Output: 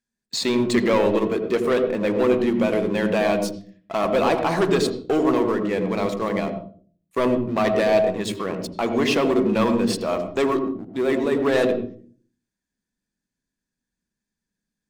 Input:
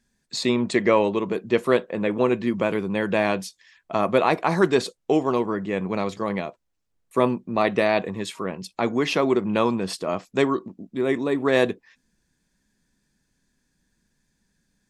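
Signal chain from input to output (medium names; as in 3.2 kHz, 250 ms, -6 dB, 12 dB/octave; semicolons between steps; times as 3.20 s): bass shelf 150 Hz -9 dB; waveshaping leveller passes 3; on a send: reverberation RT60 0.45 s, pre-delay 76 ms, DRR 8 dB; on the sum: trim -8 dB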